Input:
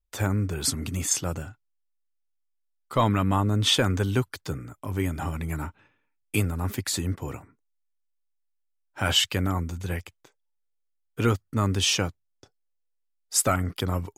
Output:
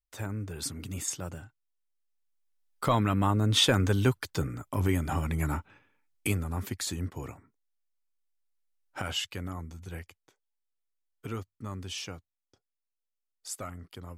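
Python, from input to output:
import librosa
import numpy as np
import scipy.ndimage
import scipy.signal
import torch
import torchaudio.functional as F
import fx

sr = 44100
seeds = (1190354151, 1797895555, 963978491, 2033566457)

y = fx.recorder_agc(x, sr, target_db=-17.0, rise_db_per_s=6.0, max_gain_db=30)
y = fx.doppler_pass(y, sr, speed_mps=11, closest_m=15.0, pass_at_s=4.45)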